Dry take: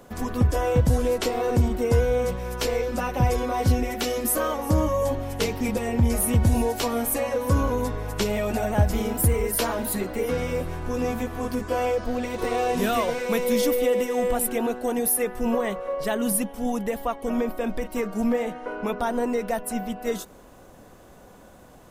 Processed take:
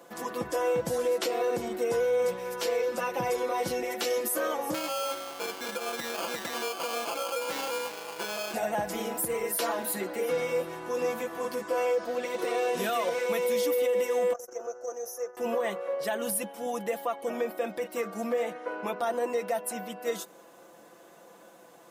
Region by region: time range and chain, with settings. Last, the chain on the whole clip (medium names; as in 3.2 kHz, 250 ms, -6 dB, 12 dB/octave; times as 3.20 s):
4.74–8.54 s: sample-rate reducer 1.9 kHz + high-pass 510 Hz 6 dB/octave
14.33–15.37 s: FFT filter 120 Hz 0 dB, 180 Hz -26 dB, 550 Hz -3 dB, 890 Hz -12 dB, 1.3 kHz -5 dB, 2.2 kHz -20 dB, 4 kHz -29 dB, 6.1 kHz +10 dB, 8.6 kHz -23 dB, 13 kHz -18 dB + transformer saturation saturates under 130 Hz
whole clip: high-pass 320 Hz 12 dB/octave; comb 5.9 ms, depth 58%; peak limiter -17 dBFS; trim -3 dB